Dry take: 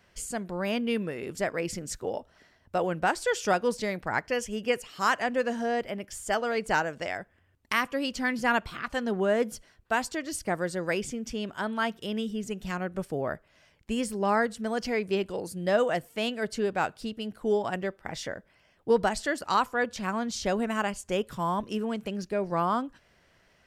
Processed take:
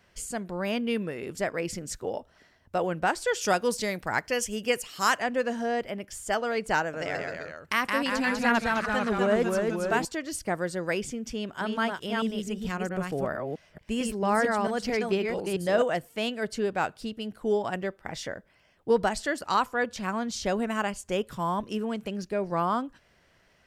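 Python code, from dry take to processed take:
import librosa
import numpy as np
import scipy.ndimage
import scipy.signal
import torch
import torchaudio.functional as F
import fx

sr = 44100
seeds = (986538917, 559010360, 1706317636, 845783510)

y = fx.high_shelf(x, sr, hz=4400.0, db=10.0, at=(3.41, 5.18))
y = fx.echo_pitch(y, sr, ms=117, semitones=-1, count=3, db_per_echo=-3.0, at=(6.82, 10.05))
y = fx.reverse_delay(y, sr, ms=223, wet_db=-3.0, at=(11.33, 15.82))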